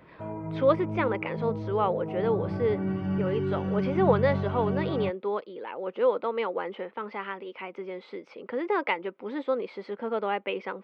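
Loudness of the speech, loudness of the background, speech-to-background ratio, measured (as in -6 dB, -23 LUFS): -30.0 LUFS, -32.0 LUFS, 2.0 dB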